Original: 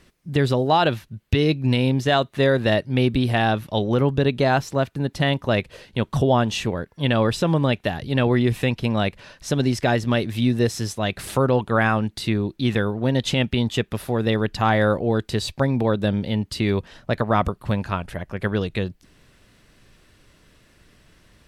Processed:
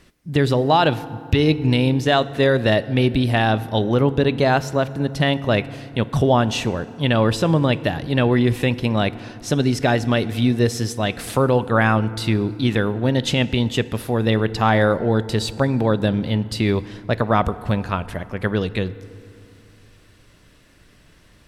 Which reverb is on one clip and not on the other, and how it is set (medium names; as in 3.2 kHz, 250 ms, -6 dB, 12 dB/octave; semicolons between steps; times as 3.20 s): FDN reverb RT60 2.5 s, low-frequency decay 1.25×, high-frequency decay 0.5×, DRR 15 dB; trim +2 dB